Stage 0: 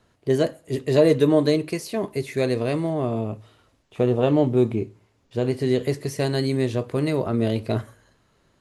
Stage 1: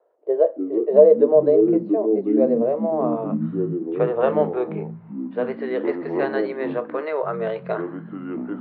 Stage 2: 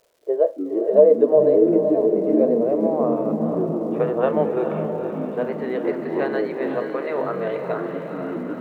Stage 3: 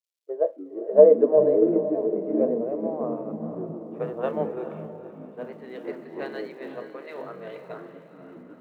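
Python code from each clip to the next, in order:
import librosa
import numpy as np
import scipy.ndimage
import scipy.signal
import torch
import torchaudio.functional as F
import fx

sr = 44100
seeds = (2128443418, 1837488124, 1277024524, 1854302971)

y1 = fx.filter_sweep_lowpass(x, sr, from_hz=590.0, to_hz=1500.0, start_s=2.68, end_s=3.39, q=1.7)
y1 = scipy.signal.sosfilt(scipy.signal.ellip(3, 1.0, 40, [460.0, 4100.0], 'bandpass', fs=sr, output='sos'), y1)
y1 = fx.echo_pitch(y1, sr, ms=181, semitones=-6, count=3, db_per_echo=-6.0)
y1 = F.gain(torch.from_numpy(y1), 2.5).numpy()
y2 = fx.dmg_crackle(y1, sr, seeds[0], per_s=360.0, level_db=-50.0)
y2 = fx.echo_diffused(y2, sr, ms=472, feedback_pct=61, wet_db=-6)
y2 = F.gain(torch.from_numpy(y2), -1.0).numpy()
y3 = fx.band_widen(y2, sr, depth_pct=100)
y3 = F.gain(torch.from_numpy(y3), -7.5).numpy()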